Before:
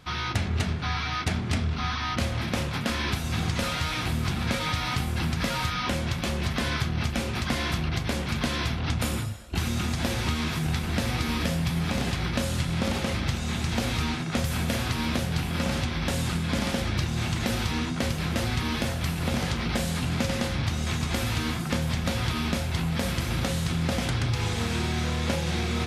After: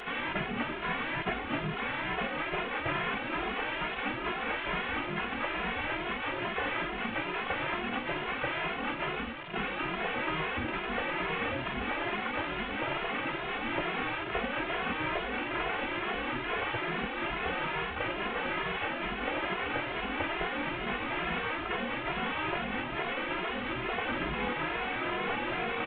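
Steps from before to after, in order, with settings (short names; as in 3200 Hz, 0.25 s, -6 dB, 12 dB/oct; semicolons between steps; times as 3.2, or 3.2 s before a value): delta modulation 16 kbps, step -32 dBFS; spectral gate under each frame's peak -10 dB weak; endless flanger 2.4 ms +2.3 Hz; gain +4 dB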